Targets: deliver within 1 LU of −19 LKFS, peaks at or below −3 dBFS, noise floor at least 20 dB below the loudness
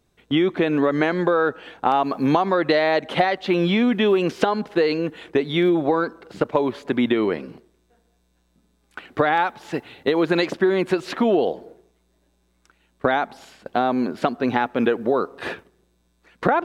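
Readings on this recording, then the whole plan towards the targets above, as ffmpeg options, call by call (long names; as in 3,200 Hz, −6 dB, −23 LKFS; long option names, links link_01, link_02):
integrated loudness −21.5 LKFS; sample peak −2.0 dBFS; target loudness −19.0 LKFS
→ -af "volume=2.5dB,alimiter=limit=-3dB:level=0:latency=1"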